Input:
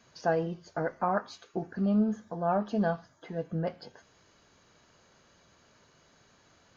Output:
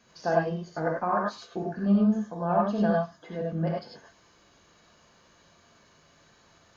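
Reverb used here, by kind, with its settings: non-linear reverb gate 0.12 s rising, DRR -2 dB; gain -1 dB

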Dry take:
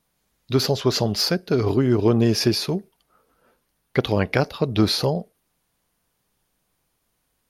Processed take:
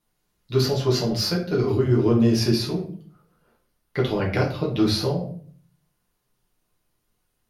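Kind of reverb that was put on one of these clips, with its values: shoebox room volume 48 m³, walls mixed, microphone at 0.88 m; gain -8 dB

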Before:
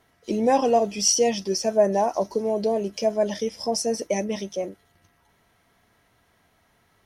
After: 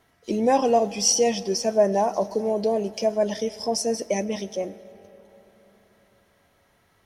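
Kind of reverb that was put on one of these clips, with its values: digital reverb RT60 4 s, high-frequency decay 0.6×, pre-delay 55 ms, DRR 18 dB

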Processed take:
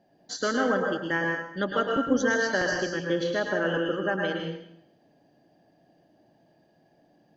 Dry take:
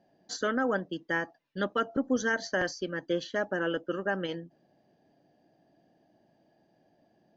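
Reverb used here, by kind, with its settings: plate-style reverb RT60 0.72 s, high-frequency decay 1×, pre-delay 95 ms, DRR 1 dB; gain +2 dB

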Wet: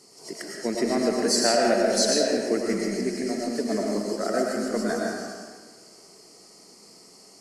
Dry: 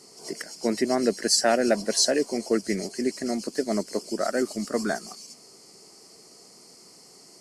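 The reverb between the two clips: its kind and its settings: digital reverb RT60 1.6 s, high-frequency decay 0.65×, pre-delay 65 ms, DRR -2 dB; gain -3 dB

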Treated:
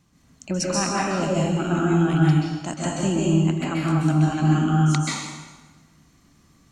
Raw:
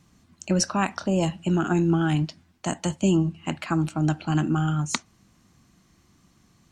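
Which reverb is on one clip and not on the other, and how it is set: plate-style reverb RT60 1.3 s, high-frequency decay 0.85×, pre-delay 0.12 s, DRR -5.5 dB; gain -3.5 dB

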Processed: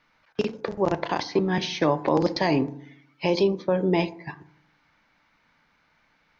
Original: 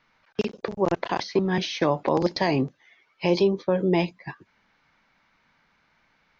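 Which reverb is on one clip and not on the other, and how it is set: FDN reverb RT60 0.68 s, low-frequency decay 1.3×, high-frequency decay 0.4×, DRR 12 dB

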